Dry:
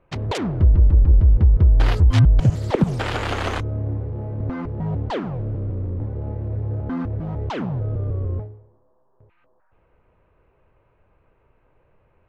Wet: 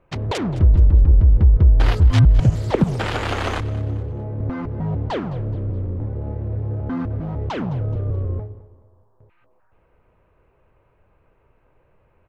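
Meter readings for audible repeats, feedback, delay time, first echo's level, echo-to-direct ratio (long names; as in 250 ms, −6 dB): 3, 41%, 212 ms, −18.0 dB, −17.0 dB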